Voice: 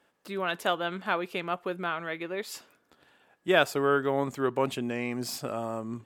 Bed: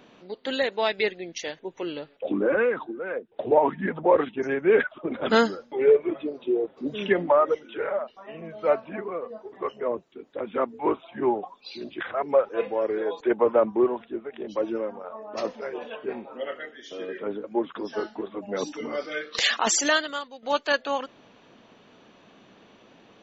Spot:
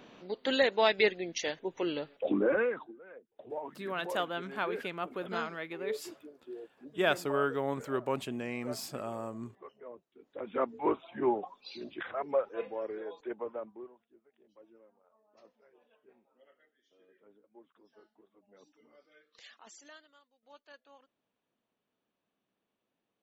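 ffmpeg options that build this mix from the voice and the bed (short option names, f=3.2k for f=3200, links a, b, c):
-filter_complex "[0:a]adelay=3500,volume=-5.5dB[a];[1:a]volume=14dB,afade=t=out:st=2.16:d=0.85:silence=0.112202,afade=t=in:st=10.11:d=0.52:silence=0.177828,afade=t=out:st=11.37:d=2.58:silence=0.0473151[b];[a][b]amix=inputs=2:normalize=0"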